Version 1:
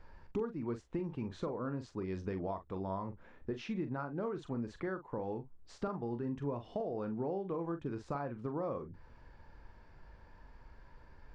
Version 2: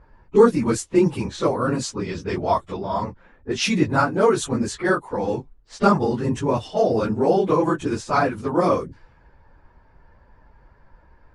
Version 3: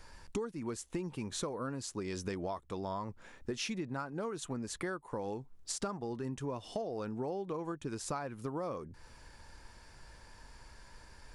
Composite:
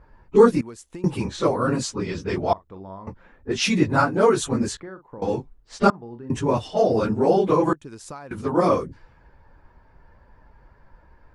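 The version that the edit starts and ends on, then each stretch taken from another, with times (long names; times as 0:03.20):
2
0:00.61–0:01.04: punch in from 3
0:02.53–0:03.07: punch in from 1
0:04.77–0:05.22: punch in from 1
0:05.90–0:06.30: punch in from 1
0:07.73–0:08.31: punch in from 3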